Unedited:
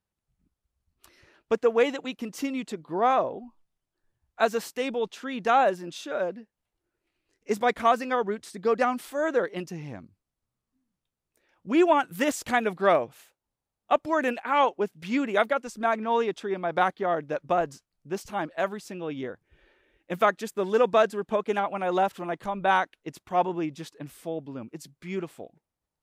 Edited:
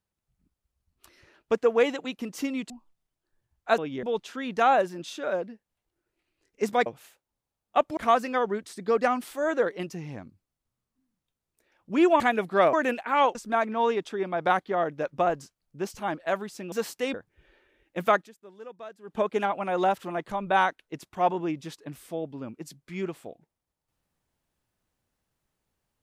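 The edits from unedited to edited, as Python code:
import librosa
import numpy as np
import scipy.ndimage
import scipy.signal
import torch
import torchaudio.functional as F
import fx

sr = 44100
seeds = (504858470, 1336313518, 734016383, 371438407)

y = fx.edit(x, sr, fx.cut(start_s=2.7, length_s=0.71),
    fx.swap(start_s=4.49, length_s=0.42, other_s=19.03, other_length_s=0.25),
    fx.cut(start_s=11.97, length_s=0.51),
    fx.move(start_s=13.01, length_s=1.11, to_s=7.74),
    fx.cut(start_s=14.74, length_s=0.92),
    fx.fade_down_up(start_s=20.35, length_s=0.91, db=-21.5, fade_s=0.37, curve='exp'), tone=tone)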